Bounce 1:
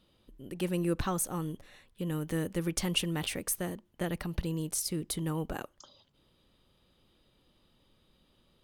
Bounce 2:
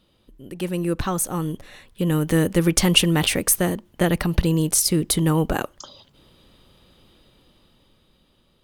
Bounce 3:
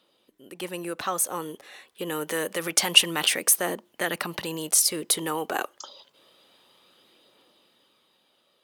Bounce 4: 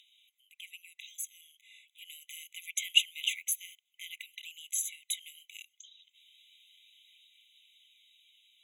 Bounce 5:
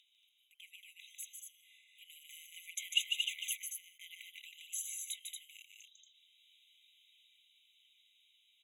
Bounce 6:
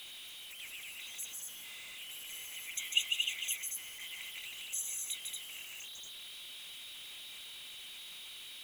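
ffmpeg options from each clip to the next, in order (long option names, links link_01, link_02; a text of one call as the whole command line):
ffmpeg -i in.wav -af "dynaudnorm=framelen=350:gausssize=9:maxgain=9dB,volume=5dB" out.wav
ffmpeg -i in.wav -filter_complex "[0:a]highpass=430,acrossover=split=690[link_01][link_02];[link_01]alimiter=level_in=0.5dB:limit=-24dB:level=0:latency=1,volume=-0.5dB[link_03];[link_03][link_02]amix=inputs=2:normalize=0,aphaser=in_gain=1:out_gain=1:delay=2.7:decay=0.25:speed=0.27:type=triangular,volume=-1dB" out.wav
ffmpeg -i in.wav -af "highshelf=frequency=10000:gain=-4,acompressor=mode=upward:threshold=-42dB:ratio=2.5,afftfilt=real='re*eq(mod(floor(b*sr/1024/2000),2),1)':imag='im*eq(mod(floor(b*sr/1024/2000),2),1)':win_size=1024:overlap=0.75,volume=-7dB" out.wav
ffmpeg -i in.wav -af "aecho=1:1:148.7|230.3:0.562|0.562,volume=-8dB" out.wav
ffmpeg -i in.wav -af "aeval=exprs='val(0)+0.5*0.00631*sgn(val(0))':channel_layout=same,volume=1dB" out.wav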